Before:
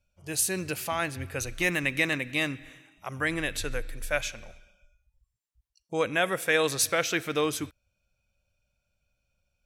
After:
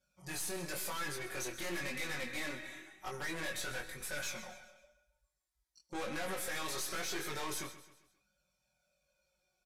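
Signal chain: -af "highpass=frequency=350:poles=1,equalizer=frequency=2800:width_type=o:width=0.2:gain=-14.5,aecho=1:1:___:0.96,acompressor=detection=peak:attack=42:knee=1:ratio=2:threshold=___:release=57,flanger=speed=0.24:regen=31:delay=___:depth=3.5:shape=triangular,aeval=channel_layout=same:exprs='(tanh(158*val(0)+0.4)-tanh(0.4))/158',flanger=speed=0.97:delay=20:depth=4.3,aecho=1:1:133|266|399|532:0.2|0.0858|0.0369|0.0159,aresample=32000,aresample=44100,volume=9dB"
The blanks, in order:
5.4, -35dB, 0.6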